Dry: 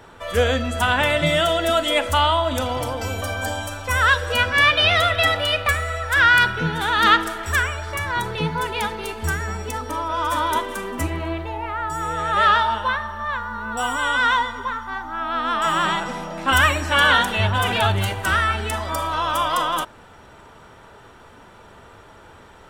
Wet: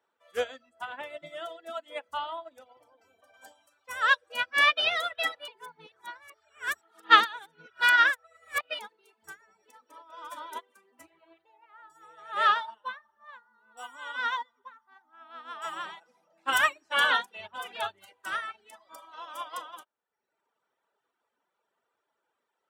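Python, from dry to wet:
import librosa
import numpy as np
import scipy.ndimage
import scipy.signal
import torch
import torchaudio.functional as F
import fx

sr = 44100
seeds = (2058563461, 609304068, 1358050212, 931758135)

y = fx.high_shelf(x, sr, hz=2400.0, db=-9.5, at=(0.69, 3.34))
y = fx.echo_throw(y, sr, start_s=9.42, length_s=0.4, ms=200, feedback_pct=35, wet_db=-8.5)
y = fx.edit(y, sr, fx.reverse_span(start_s=5.48, length_s=3.31), tone=tone)
y = scipy.signal.sosfilt(scipy.signal.butter(2, 370.0, 'highpass', fs=sr, output='sos'), y)
y = fx.dereverb_blind(y, sr, rt60_s=1.1)
y = fx.upward_expand(y, sr, threshold_db=-32.0, expansion=2.5)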